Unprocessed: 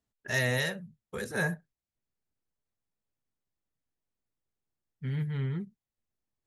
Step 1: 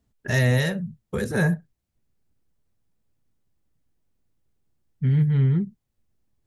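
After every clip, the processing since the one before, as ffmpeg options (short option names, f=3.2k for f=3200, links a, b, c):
-filter_complex "[0:a]lowshelf=f=370:g=12,asplit=2[a][b];[b]acompressor=threshold=-32dB:ratio=6,volume=1dB[c];[a][c]amix=inputs=2:normalize=0"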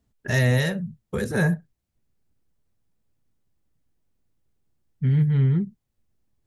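-af anull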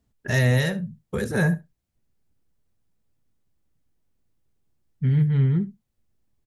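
-af "aecho=1:1:71:0.112"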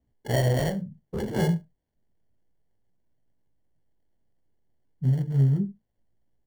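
-filter_complex "[0:a]acrossover=split=1100[a][b];[a]flanger=delay=16.5:depth=7.7:speed=0.31[c];[b]acrusher=samples=35:mix=1:aa=0.000001[d];[c][d]amix=inputs=2:normalize=0"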